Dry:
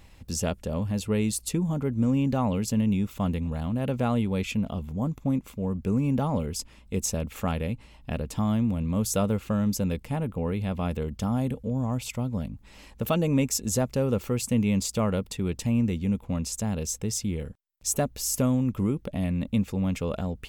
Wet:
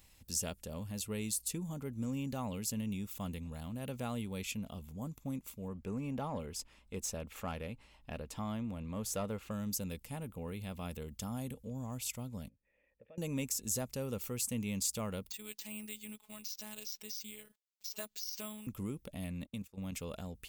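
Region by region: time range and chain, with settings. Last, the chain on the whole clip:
5.68–9.51 low shelf 64 Hz +10 dB + overdrive pedal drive 13 dB, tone 1200 Hz, clips at -11.5 dBFS
12.49–13.18 vocal tract filter e + compressor 1.5:1, threshold -49 dBFS
15.3–18.67 robotiser 213 Hz + tilt +4 dB/oct + careless resampling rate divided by 4×, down filtered, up hold
19.45–19.92 level quantiser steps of 13 dB + gate -42 dBFS, range -20 dB
whole clip: pre-emphasis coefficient 0.8; de-esser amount 50%

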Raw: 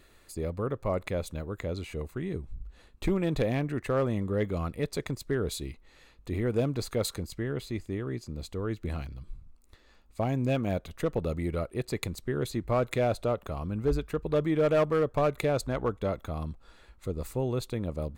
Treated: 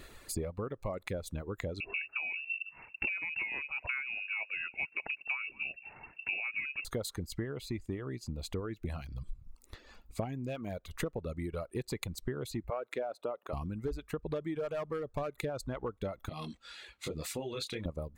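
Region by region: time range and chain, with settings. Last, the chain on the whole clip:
1.8–6.85 echo 0.211 s -19.5 dB + inverted band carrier 2700 Hz
12.7–13.53 HPF 390 Hz + high shelf 2800 Hz -11.5 dB
16.29–17.86 weighting filter D + compressor 2:1, threshold -38 dBFS + detuned doubles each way 13 cents
whole clip: compressor 10:1, threshold -40 dBFS; reverb removal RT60 1 s; gain +7.5 dB

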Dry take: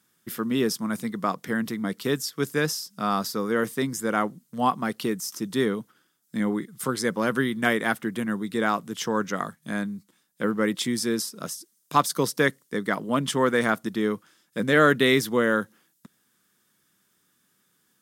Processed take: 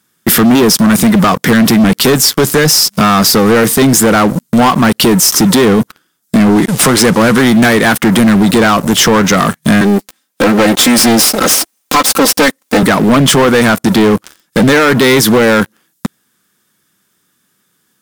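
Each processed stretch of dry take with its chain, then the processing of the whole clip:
6.56–7.45 CVSD 64 kbps + HPF 44 Hz
9.81–12.83 minimum comb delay 3.8 ms + HPF 230 Hz
whole clip: compressor 4:1, threshold -30 dBFS; sample leveller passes 5; maximiser +21 dB; gain -3 dB

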